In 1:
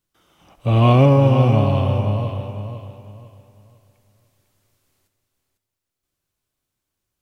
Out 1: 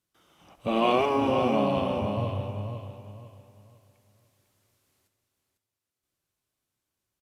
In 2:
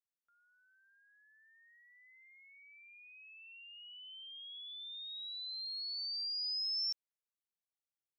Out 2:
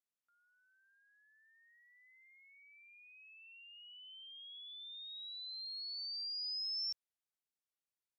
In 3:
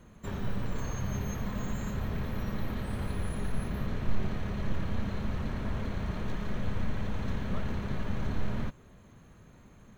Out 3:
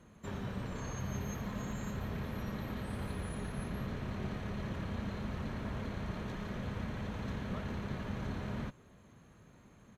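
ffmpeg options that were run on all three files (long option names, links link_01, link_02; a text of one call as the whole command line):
ffmpeg -i in.wav -af "afftfilt=real='re*lt(hypot(re,im),1)':imag='im*lt(hypot(re,im),1)':win_size=1024:overlap=0.75,highpass=frequency=79:poles=1,aresample=32000,aresample=44100,volume=-3dB" out.wav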